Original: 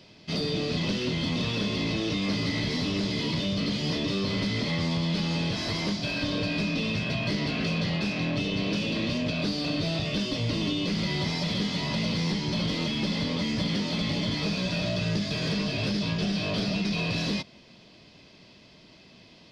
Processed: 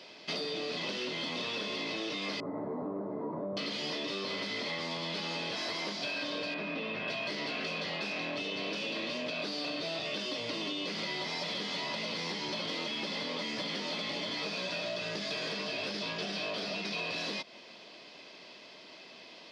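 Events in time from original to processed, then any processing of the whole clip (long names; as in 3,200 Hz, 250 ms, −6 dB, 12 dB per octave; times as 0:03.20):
0:02.40–0:03.57: inverse Chebyshev low-pass filter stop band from 2,700 Hz, stop band 50 dB
0:06.54–0:07.08: low-pass filter 2,400 Hz
whole clip: high-pass filter 440 Hz 12 dB per octave; high-shelf EQ 5,600 Hz −6.5 dB; downward compressor, threshold −39 dBFS; level +5.5 dB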